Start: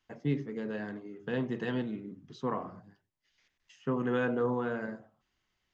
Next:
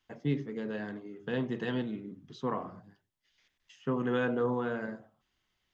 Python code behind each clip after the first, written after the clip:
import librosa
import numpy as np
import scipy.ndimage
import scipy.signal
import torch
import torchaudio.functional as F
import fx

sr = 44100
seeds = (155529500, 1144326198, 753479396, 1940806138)

y = fx.peak_eq(x, sr, hz=3400.0, db=4.0, octaves=0.35)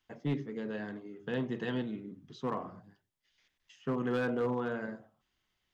y = np.clip(x, -10.0 ** (-23.5 / 20.0), 10.0 ** (-23.5 / 20.0))
y = F.gain(torch.from_numpy(y), -1.5).numpy()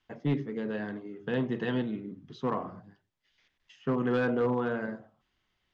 y = fx.air_absorb(x, sr, metres=100.0)
y = F.gain(torch.from_numpy(y), 4.5).numpy()